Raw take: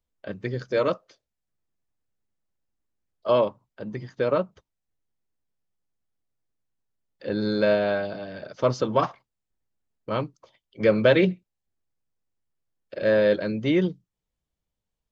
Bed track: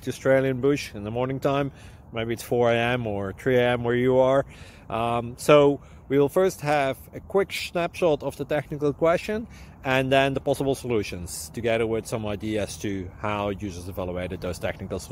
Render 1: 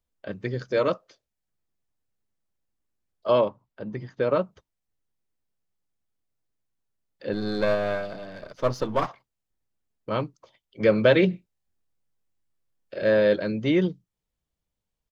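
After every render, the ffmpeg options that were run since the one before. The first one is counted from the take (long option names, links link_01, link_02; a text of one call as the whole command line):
ffmpeg -i in.wav -filter_complex "[0:a]asettb=1/sr,asplit=3[link_01][link_02][link_03];[link_01]atrim=end=3.414[link_04];[link_02]atrim=start=3.41:end=4.31,asetpts=PTS-STARTPTS,afade=type=in:duration=0.004:curve=qsin,afade=type=out:start_time=0.896:duration=0.004:curve=qsin,highshelf=frequency=5300:gain=-10[link_05];[link_03]atrim=start=4.306[link_06];[link_04][link_05]acrossfade=duration=0.004:curve1=hsin:curve2=qsin[link_07];[link_07][link_06]acrossfade=duration=0.004:curve1=qsin:curve2=hsin,asettb=1/sr,asplit=3[link_08][link_09][link_10];[link_08]atrim=end=7.334[link_11];[link_09]atrim=start=7.33:end=9.08,asetpts=PTS-STARTPTS,afade=type=in:duration=0.004:curve=qsin,afade=type=out:start_time=1.746:duration=0.004:curve=qsin,aeval=exprs='if(lt(val(0),0),0.447*val(0),val(0))':channel_layout=same[link_12];[link_10]atrim=start=9.076[link_13];[link_11][link_12]acrossfade=duration=0.004:curve1=hsin:curve2=qsin[link_14];[link_14][link_13]acrossfade=duration=0.004:curve1=qsin:curve2=hsin,asplit=3[link_15][link_16][link_17];[link_15]afade=type=out:start_time=11.32:duration=0.02[link_18];[link_16]asplit=2[link_19][link_20];[link_20]adelay=24,volume=-3dB[link_21];[link_19][link_21]amix=inputs=2:normalize=0,afade=type=in:start_time=11.32:duration=0.02,afade=type=out:start_time=13.02:duration=0.02[link_22];[link_17]afade=type=in:start_time=13.02:duration=0.02[link_23];[link_18][link_22][link_23]amix=inputs=3:normalize=0" out.wav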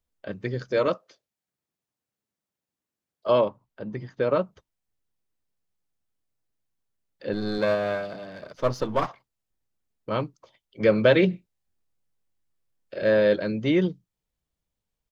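ffmpeg -i in.wav -filter_complex "[0:a]asettb=1/sr,asplit=3[link_01][link_02][link_03];[link_01]atrim=end=0.864[link_04];[link_02]atrim=start=0.86:end=3.27,asetpts=PTS-STARTPTS,afade=type=in:duration=0.004:curve=qsin,afade=type=out:start_time=2.406:duration=0.004:curve=qsin,highpass=130[link_05];[link_03]atrim=start=3.266[link_06];[link_04][link_05]acrossfade=duration=0.004:curve1=hsin:curve2=qsin[link_07];[link_07][link_06]acrossfade=duration=0.004:curve1=qsin:curve2=hsin,asettb=1/sr,asplit=3[link_08][link_09][link_10];[link_08]atrim=end=7.584[link_11];[link_09]atrim=start=7.58:end=8.54,asetpts=PTS-STARTPTS,afade=type=in:duration=0.004:curve=qsin,afade=type=out:start_time=0.956:duration=0.004:curve=qsin,highpass=87[link_12];[link_10]atrim=start=8.536[link_13];[link_11][link_12]acrossfade=duration=0.004:curve1=hsin:curve2=qsin[link_14];[link_14][link_13]acrossfade=duration=0.004:curve1=qsin:curve2=hsin" out.wav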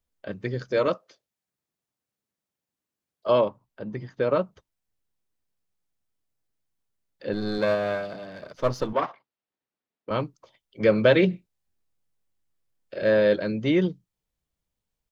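ffmpeg -i in.wav -filter_complex "[0:a]asettb=1/sr,asplit=3[link_01][link_02][link_03];[link_01]atrim=end=8.934[link_04];[link_02]atrim=start=8.93:end=10.11,asetpts=PTS-STARTPTS,afade=type=in:duration=0.004:curve=qsin,afade=type=out:start_time=1.176:duration=0.004:curve=qsin,highpass=240,lowpass=3400[link_05];[link_03]atrim=start=10.106[link_06];[link_04][link_05]acrossfade=duration=0.004:curve1=hsin:curve2=qsin[link_07];[link_07][link_06]acrossfade=duration=0.004:curve1=qsin:curve2=hsin" out.wav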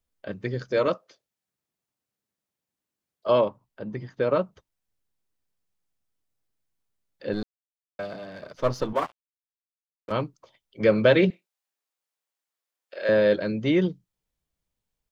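ffmpeg -i in.wav -filter_complex "[0:a]asettb=1/sr,asplit=3[link_01][link_02][link_03];[link_01]atrim=end=8.954[link_04];[link_02]atrim=start=8.95:end=10.12,asetpts=PTS-STARTPTS,afade=type=in:duration=0.004:curve=qsin,afade=type=out:start_time=1.166:duration=0.004:curve=qsin,aeval=exprs='sgn(val(0))*max(abs(val(0))-0.00944,0)':channel_layout=same[link_05];[link_03]atrim=start=10.116[link_06];[link_04][link_05]acrossfade=duration=0.004:curve1=hsin:curve2=qsin[link_07];[link_07][link_06]acrossfade=duration=0.004:curve1=qsin:curve2=hsin,asettb=1/sr,asplit=3[link_08][link_09][link_10];[link_08]atrim=end=11.304[link_11];[link_09]atrim=start=11.3:end=13.09,asetpts=PTS-STARTPTS,afade=type=in:duration=0.004:curve=qsin,afade=type=out:start_time=1.786:duration=0.004:curve=qsin,highpass=620[link_12];[link_10]atrim=start=13.086[link_13];[link_11][link_12]acrossfade=duration=0.004:curve1=hsin:curve2=qsin[link_14];[link_14][link_13]acrossfade=duration=0.004:curve1=qsin:curve2=hsin,asplit=3[link_15][link_16][link_17];[link_15]atrim=end=7.43,asetpts=PTS-STARTPTS,afade=type=out:start_time=7.426:duration=0.004:curve=hsin[link_18];[link_16]atrim=start=7.43:end=7.99,asetpts=PTS-STARTPTS,volume=0[link_19];[link_17]atrim=start=7.99,asetpts=PTS-STARTPTS,afade=type=in:duration=0.004:curve=hsin[link_20];[link_18][link_19][link_20]concat=n=3:v=0:a=1" out.wav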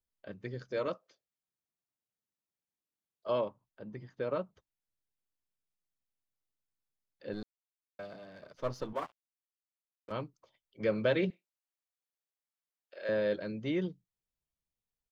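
ffmpeg -i in.wav -af "volume=-11dB" out.wav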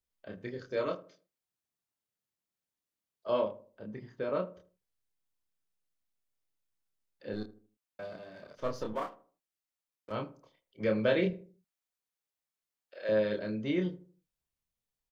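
ffmpeg -i in.wav -filter_complex "[0:a]asplit=2[link_01][link_02];[link_02]adelay=28,volume=-4dB[link_03];[link_01][link_03]amix=inputs=2:normalize=0,asplit=2[link_04][link_05];[link_05]adelay=78,lowpass=frequency=980:poles=1,volume=-14dB,asplit=2[link_06][link_07];[link_07]adelay=78,lowpass=frequency=980:poles=1,volume=0.38,asplit=2[link_08][link_09];[link_09]adelay=78,lowpass=frequency=980:poles=1,volume=0.38,asplit=2[link_10][link_11];[link_11]adelay=78,lowpass=frequency=980:poles=1,volume=0.38[link_12];[link_04][link_06][link_08][link_10][link_12]amix=inputs=5:normalize=0" out.wav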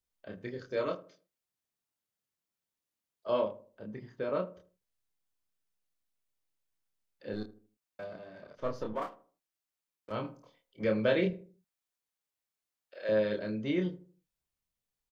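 ffmpeg -i in.wav -filter_complex "[0:a]asettb=1/sr,asplit=3[link_01][link_02][link_03];[link_01]atrim=end=8.044[link_04];[link_02]atrim=start=8.04:end=9.02,asetpts=PTS-STARTPTS,afade=type=in:duration=0.004:curve=qsin,afade=type=out:start_time=0.976:duration=0.004:curve=qsin,highshelf=frequency=4300:gain=-10[link_05];[link_03]atrim=start=9.016[link_06];[link_04][link_05]acrossfade=duration=0.004:curve1=hsin:curve2=qsin[link_07];[link_07][link_06]acrossfade=duration=0.004:curve1=qsin:curve2=hsin,asplit=3[link_08][link_09][link_10];[link_08]afade=type=out:start_time=10.23:duration=0.02[link_11];[link_09]asplit=2[link_12][link_13];[link_13]adelay=24,volume=-2.5dB[link_14];[link_12][link_14]amix=inputs=2:normalize=0,afade=type=in:start_time=10.23:duration=0.02,afade=type=out:start_time=10.83:duration=0.02[link_15];[link_10]afade=type=in:start_time=10.83:duration=0.02[link_16];[link_11][link_15][link_16]amix=inputs=3:normalize=0" out.wav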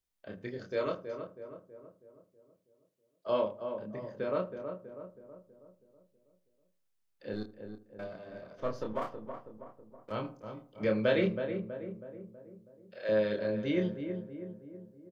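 ffmpeg -i in.wav -filter_complex "[0:a]asplit=2[link_01][link_02];[link_02]adelay=323,lowpass=frequency=1300:poles=1,volume=-7dB,asplit=2[link_03][link_04];[link_04]adelay=323,lowpass=frequency=1300:poles=1,volume=0.54,asplit=2[link_05][link_06];[link_06]adelay=323,lowpass=frequency=1300:poles=1,volume=0.54,asplit=2[link_07][link_08];[link_08]adelay=323,lowpass=frequency=1300:poles=1,volume=0.54,asplit=2[link_09][link_10];[link_10]adelay=323,lowpass=frequency=1300:poles=1,volume=0.54,asplit=2[link_11][link_12];[link_12]adelay=323,lowpass=frequency=1300:poles=1,volume=0.54,asplit=2[link_13][link_14];[link_14]adelay=323,lowpass=frequency=1300:poles=1,volume=0.54[link_15];[link_01][link_03][link_05][link_07][link_09][link_11][link_13][link_15]amix=inputs=8:normalize=0" out.wav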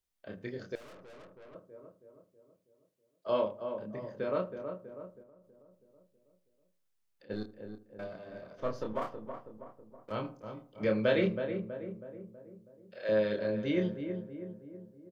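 ffmpeg -i in.wav -filter_complex "[0:a]asettb=1/sr,asplit=3[link_01][link_02][link_03];[link_01]atrim=end=0.754[link_04];[link_02]atrim=start=0.75:end=1.55,asetpts=PTS-STARTPTS,afade=type=in:duration=0.004:curve=qsin,afade=type=out:start_time=0.796:duration=0.004:curve=qsin,aeval=exprs='(tanh(355*val(0)+0.45)-tanh(0.45))/355':channel_layout=same[link_05];[link_03]atrim=start=1.546[link_06];[link_04][link_05]acrossfade=duration=0.004:curve1=hsin:curve2=qsin[link_07];[link_07][link_06]acrossfade=duration=0.004:curve1=qsin:curve2=hsin,asplit=3[link_08][link_09][link_10];[link_08]afade=type=out:start_time=5.22:duration=0.02[link_11];[link_09]acompressor=threshold=-56dB:ratio=6:attack=3.2:release=140:knee=1:detection=peak,afade=type=in:start_time=5.22:duration=0.02,afade=type=out:start_time=7.29:duration=0.02[link_12];[link_10]afade=type=in:start_time=7.29:duration=0.02[link_13];[link_11][link_12][link_13]amix=inputs=3:normalize=0" out.wav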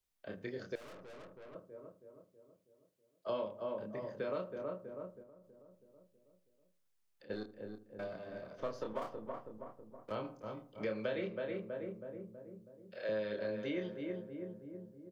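ffmpeg -i in.wav -filter_complex "[0:a]acrossover=split=310|910|3000[link_01][link_02][link_03][link_04];[link_01]acompressor=threshold=-49dB:ratio=4[link_05];[link_02]acompressor=threshold=-38dB:ratio=4[link_06];[link_03]acompressor=threshold=-48dB:ratio=4[link_07];[link_04]acompressor=threshold=-58dB:ratio=4[link_08];[link_05][link_06][link_07][link_08]amix=inputs=4:normalize=0" out.wav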